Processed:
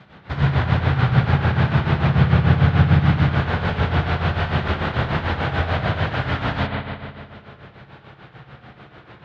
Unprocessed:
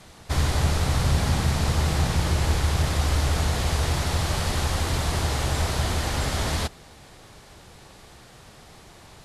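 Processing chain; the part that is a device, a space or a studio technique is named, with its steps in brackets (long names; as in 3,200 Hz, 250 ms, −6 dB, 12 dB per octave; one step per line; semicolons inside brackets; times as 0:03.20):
parametric band 11,000 Hz +4.5 dB 0.83 octaves
combo amplifier with spring reverb and tremolo (spring reverb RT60 2 s, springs 58 ms, chirp 30 ms, DRR −3 dB; amplitude tremolo 6.8 Hz, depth 67%; loudspeaker in its box 78–3,400 Hz, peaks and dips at 140 Hz +8 dB, 200 Hz +4 dB, 1,500 Hz +6 dB)
level +2 dB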